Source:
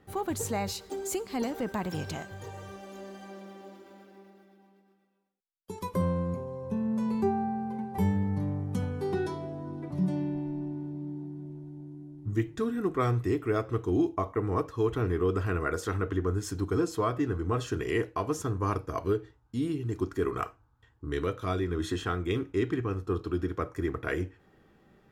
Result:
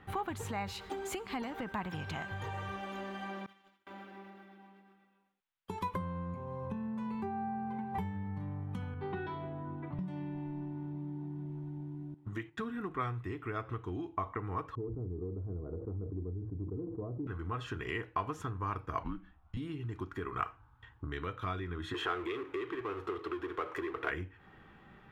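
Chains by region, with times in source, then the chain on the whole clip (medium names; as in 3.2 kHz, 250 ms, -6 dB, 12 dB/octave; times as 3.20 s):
3.46–3.87 s: amplifier tone stack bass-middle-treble 5-5-5 + expander -60 dBFS + transient shaper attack +10 dB, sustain -2 dB
8.94–9.99 s: low-pass 3.9 kHz 24 dB/octave + three bands expanded up and down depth 70%
12.14–12.60 s: high-pass 330 Hz 6 dB/octave + gate -47 dBFS, range -10 dB
14.75–17.27 s: inverse Chebyshev low-pass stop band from 3.1 kHz, stop band 80 dB + de-hum 110.7 Hz, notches 3 + decay stretcher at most 71 dB/s
19.03–19.57 s: low-pass 2.7 kHz 6 dB/octave + frequency shift -130 Hz
21.94–24.10 s: high-pass 77 Hz + resonant low shelf 270 Hz -11.5 dB, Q 3 + power-law waveshaper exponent 0.7
whole clip: tone controls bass +6 dB, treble -5 dB; compression, threshold -36 dBFS; high-order bell 1.7 kHz +10 dB 2.5 oct; trim -1.5 dB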